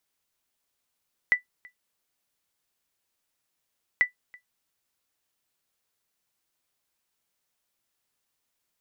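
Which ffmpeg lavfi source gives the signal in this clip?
ffmpeg -f lavfi -i "aevalsrc='0.266*(sin(2*PI*1980*mod(t,2.69))*exp(-6.91*mod(t,2.69)/0.12)+0.0447*sin(2*PI*1980*max(mod(t,2.69)-0.33,0))*exp(-6.91*max(mod(t,2.69)-0.33,0)/0.12))':duration=5.38:sample_rate=44100" out.wav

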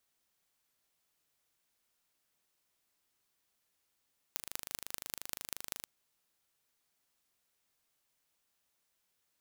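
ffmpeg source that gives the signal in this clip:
ffmpeg -f lavfi -i "aevalsrc='0.376*eq(mod(n,1716),0)*(0.5+0.5*eq(mod(n,8580),0))':duration=1.51:sample_rate=44100" out.wav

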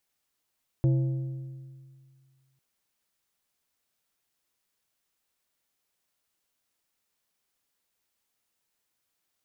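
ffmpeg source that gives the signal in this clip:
ffmpeg -f lavfi -i "aevalsrc='0.119*pow(10,-3*t/2.03)*sin(2*PI*133*t)+0.0398*pow(10,-3*t/1.542)*sin(2*PI*332.5*t)+0.0133*pow(10,-3*t/1.339)*sin(2*PI*532*t)+0.00447*pow(10,-3*t/1.253)*sin(2*PI*665*t)+0.0015*pow(10,-3*t/1.158)*sin(2*PI*864.5*t)':duration=1.75:sample_rate=44100" out.wav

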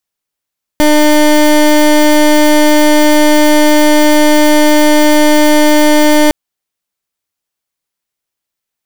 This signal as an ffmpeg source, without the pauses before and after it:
ffmpeg -f lavfi -i "aevalsrc='0.473*(2*lt(mod(301*t,1),0.23)-1)':duration=5.51:sample_rate=44100" out.wav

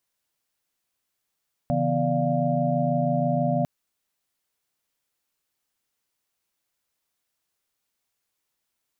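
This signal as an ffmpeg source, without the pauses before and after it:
ffmpeg -f lavfi -i "aevalsrc='0.0447*(sin(2*PI*138.59*t)+sin(2*PI*164.81*t)+sin(2*PI*246.94*t)+sin(2*PI*587.33*t)+sin(2*PI*698.46*t))':duration=1.95:sample_rate=44100" out.wav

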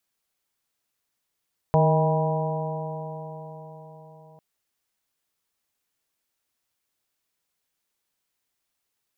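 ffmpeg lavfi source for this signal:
ffmpeg -f lavfi -i "aevalsrc='0.126*pow(10,-3*t/4.74)*sin(2*PI*155.19*t)+0.0158*pow(10,-3*t/4.74)*sin(2*PI*311.55*t)+0.0708*pow(10,-3*t/4.74)*sin(2*PI*470.2*t)+0.0891*pow(10,-3*t/4.74)*sin(2*PI*632.28*t)+0.0631*pow(10,-3*t/4.74)*sin(2*PI*798.85*t)+0.0562*pow(10,-3*t/4.74)*sin(2*PI*970.95*t)':duration=2.65:sample_rate=44100" out.wav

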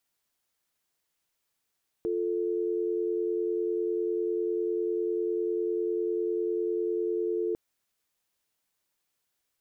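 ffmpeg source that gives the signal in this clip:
ffmpeg -f lavfi -i "aevalsrc='0.0355*(sin(2*PI*350*t)+sin(2*PI*440*t))':duration=5.5:sample_rate=44100" out.wav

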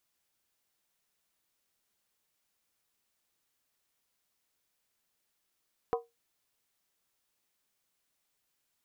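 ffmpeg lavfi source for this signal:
ffmpeg -f lavfi -i "aevalsrc='0.0631*pow(10,-3*t/0.2)*sin(2*PI*467*t)+0.0398*pow(10,-3*t/0.158)*sin(2*PI*744.4*t)+0.0251*pow(10,-3*t/0.137)*sin(2*PI*997.5*t)+0.0158*pow(10,-3*t/0.132)*sin(2*PI*1072.2*t)+0.01*pow(10,-3*t/0.123)*sin(2*PI*1239*t)':duration=0.63:sample_rate=44100" out.wav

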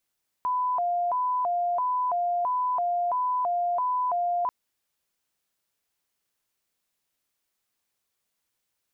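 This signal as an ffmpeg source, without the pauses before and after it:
ffmpeg -f lavfi -i "aevalsrc='0.0708*sin(2*PI*(850.5*t+148.5/1.5*(0.5-abs(mod(1.5*t,1)-0.5))))':duration=4.04:sample_rate=44100" out.wav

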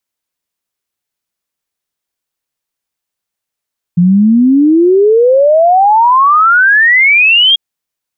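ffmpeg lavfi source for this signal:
ffmpeg -f lavfi -i "aevalsrc='0.631*clip(min(t,3.59-t)/0.01,0,1)*sin(2*PI*170*3.59/log(3300/170)*(exp(log(3300/170)*t/3.59)-1))':duration=3.59:sample_rate=44100" out.wav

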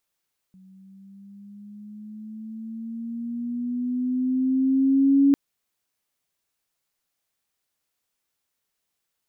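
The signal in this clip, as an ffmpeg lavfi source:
ffmpeg -f lavfi -i "aevalsrc='pow(10,(-13+34.5*(t/4.8-1))/20)*sin(2*PI*187*4.8/(7*log(2)/12)*(exp(7*log(2)/12*t/4.8)-1))':duration=4.8:sample_rate=44100" out.wav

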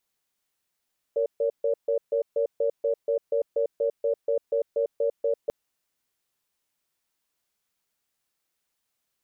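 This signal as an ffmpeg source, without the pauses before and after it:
ffmpeg -f lavfi -i "aevalsrc='0.0631*(sin(2*PI*463*t)+sin(2*PI*566*t))*clip(min(mod(t,0.24),0.1-mod(t,0.24))/0.005,0,1)':duration=4.34:sample_rate=44100" out.wav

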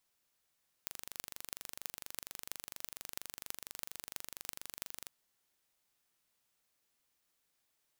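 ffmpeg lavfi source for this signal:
ffmpeg -f lavfi -i "aevalsrc='0.299*eq(mod(n,1815),0)*(0.5+0.5*eq(mod(n,14520),0))':duration=4.22:sample_rate=44100" out.wav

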